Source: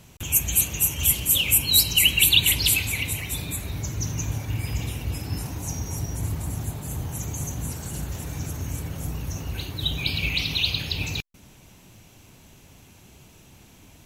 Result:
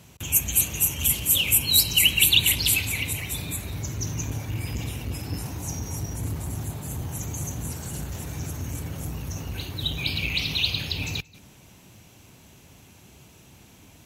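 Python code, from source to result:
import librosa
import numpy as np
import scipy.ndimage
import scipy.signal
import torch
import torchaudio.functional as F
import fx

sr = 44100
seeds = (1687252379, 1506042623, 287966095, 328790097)

p1 = scipy.signal.sosfilt(scipy.signal.butter(2, 54.0, 'highpass', fs=sr, output='sos'), x)
p2 = p1 + fx.echo_single(p1, sr, ms=180, db=-23.5, dry=0)
y = fx.transformer_sat(p2, sr, knee_hz=730.0)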